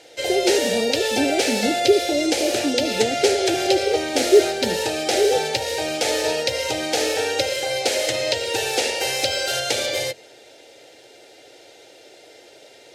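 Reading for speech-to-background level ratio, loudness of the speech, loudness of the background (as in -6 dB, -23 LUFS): -0.5 dB, -22.5 LUFS, -22.0 LUFS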